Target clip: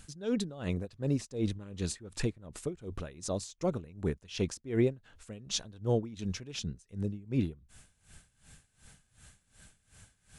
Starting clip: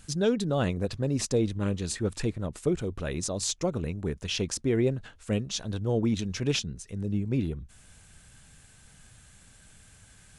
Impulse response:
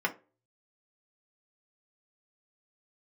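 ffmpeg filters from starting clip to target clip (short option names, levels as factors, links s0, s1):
-af "aeval=exprs='val(0)*pow(10,-20*(0.5-0.5*cos(2*PI*2.7*n/s))/20)':c=same"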